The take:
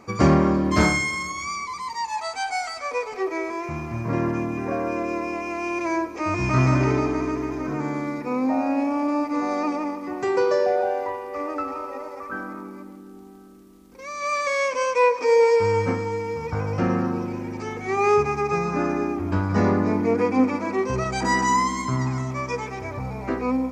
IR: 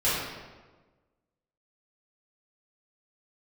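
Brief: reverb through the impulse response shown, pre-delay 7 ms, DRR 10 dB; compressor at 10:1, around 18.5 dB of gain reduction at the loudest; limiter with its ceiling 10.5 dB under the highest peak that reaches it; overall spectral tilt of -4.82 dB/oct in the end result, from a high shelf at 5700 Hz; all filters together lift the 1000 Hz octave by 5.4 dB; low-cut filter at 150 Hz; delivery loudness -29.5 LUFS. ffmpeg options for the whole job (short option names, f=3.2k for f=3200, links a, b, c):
-filter_complex "[0:a]highpass=150,equalizer=f=1k:t=o:g=6,highshelf=f=5.7k:g=8.5,acompressor=threshold=-31dB:ratio=10,alimiter=level_in=6.5dB:limit=-24dB:level=0:latency=1,volume=-6.5dB,asplit=2[a][b];[1:a]atrim=start_sample=2205,adelay=7[c];[b][c]afir=irnorm=-1:irlink=0,volume=-23.5dB[d];[a][d]amix=inputs=2:normalize=0,volume=8.5dB"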